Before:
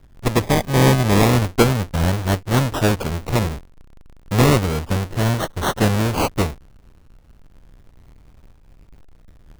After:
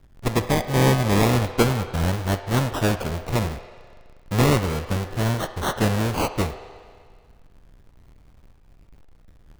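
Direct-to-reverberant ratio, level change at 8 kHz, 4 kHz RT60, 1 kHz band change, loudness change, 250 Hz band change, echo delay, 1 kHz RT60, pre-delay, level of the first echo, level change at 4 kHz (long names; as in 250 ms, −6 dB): 8.5 dB, −4.0 dB, 1.9 s, −3.5 dB, −4.0 dB, −4.0 dB, no echo audible, 1.9 s, 8 ms, no echo audible, −3.5 dB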